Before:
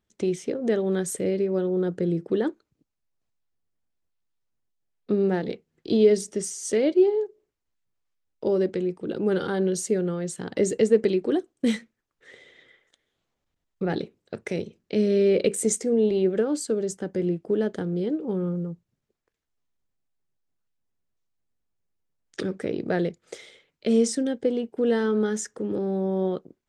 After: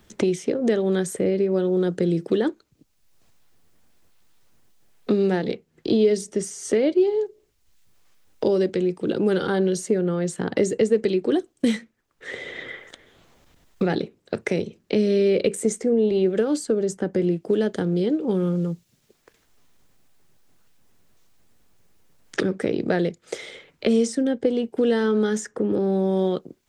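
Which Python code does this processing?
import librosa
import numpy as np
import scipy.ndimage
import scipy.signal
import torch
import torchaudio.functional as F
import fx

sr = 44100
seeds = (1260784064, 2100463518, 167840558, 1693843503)

y = fx.band_squash(x, sr, depth_pct=70)
y = y * librosa.db_to_amplitude(2.5)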